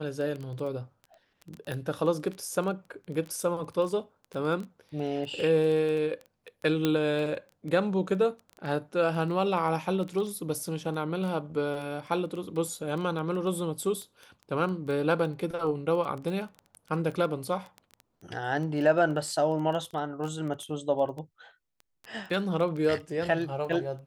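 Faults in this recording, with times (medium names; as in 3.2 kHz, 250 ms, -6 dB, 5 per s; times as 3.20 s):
crackle 10 per s -33 dBFS
1.72 s: pop -21 dBFS
6.85 s: pop -12 dBFS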